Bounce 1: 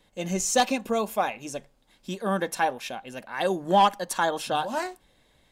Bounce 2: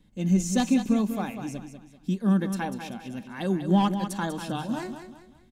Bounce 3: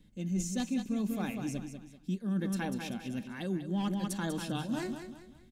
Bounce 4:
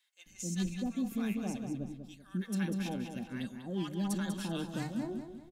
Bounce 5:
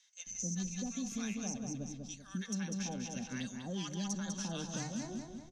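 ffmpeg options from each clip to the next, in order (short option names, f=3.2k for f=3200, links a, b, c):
-filter_complex "[0:a]lowshelf=f=360:t=q:w=1.5:g=13,asplit=2[a][b];[b]aecho=0:1:194|388|582|776:0.355|0.128|0.046|0.0166[c];[a][c]amix=inputs=2:normalize=0,volume=-7dB"
-af "equalizer=f=910:t=o:w=1.1:g=-7,areverse,acompressor=threshold=-30dB:ratio=6,areverse"
-filter_complex "[0:a]acrossover=split=980[a][b];[a]adelay=260[c];[c][b]amix=inputs=2:normalize=0,volume=-1.5dB"
-filter_complex "[0:a]lowpass=f=6.1k:t=q:w=14,equalizer=f=340:t=o:w=0.25:g=-10.5,acrossover=split=170|1500[a][b][c];[a]acompressor=threshold=-49dB:ratio=4[d];[b]acompressor=threshold=-43dB:ratio=4[e];[c]acompressor=threshold=-45dB:ratio=4[f];[d][e][f]amix=inputs=3:normalize=0,volume=2.5dB"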